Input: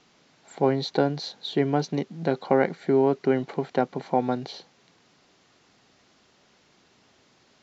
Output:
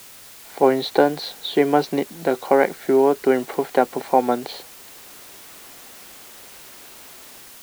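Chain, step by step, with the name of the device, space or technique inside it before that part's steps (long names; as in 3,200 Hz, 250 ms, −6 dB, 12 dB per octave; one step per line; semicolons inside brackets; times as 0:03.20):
dictaphone (band-pass filter 310–3,700 Hz; automatic gain control gain up to 14 dB; tape wow and flutter; white noise bed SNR 21 dB)
level −1 dB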